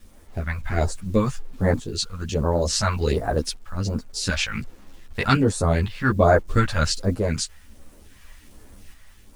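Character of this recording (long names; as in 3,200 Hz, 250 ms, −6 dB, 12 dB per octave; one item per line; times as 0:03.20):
phaser sweep stages 2, 1.3 Hz, lowest notch 320–3,000 Hz
a quantiser's noise floor 10 bits, dither none
tremolo saw up 0.56 Hz, depth 45%
a shimmering, thickened sound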